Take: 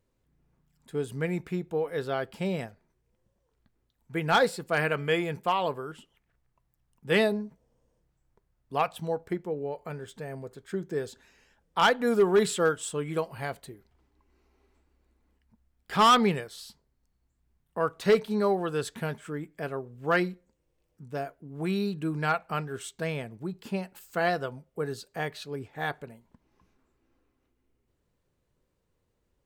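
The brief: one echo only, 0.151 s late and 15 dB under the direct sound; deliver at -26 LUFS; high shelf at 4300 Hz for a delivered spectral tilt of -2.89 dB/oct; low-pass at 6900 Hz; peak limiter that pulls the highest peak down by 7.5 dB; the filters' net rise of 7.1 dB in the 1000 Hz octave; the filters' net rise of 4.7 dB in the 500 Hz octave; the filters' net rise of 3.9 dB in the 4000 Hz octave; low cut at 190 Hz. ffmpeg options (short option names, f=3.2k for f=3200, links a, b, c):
-af "highpass=190,lowpass=6.9k,equalizer=f=500:t=o:g=4,equalizer=f=1k:t=o:g=8,equalizer=f=4k:t=o:g=9,highshelf=f=4.3k:g=-8,alimiter=limit=-12dB:level=0:latency=1,aecho=1:1:151:0.178,volume=1dB"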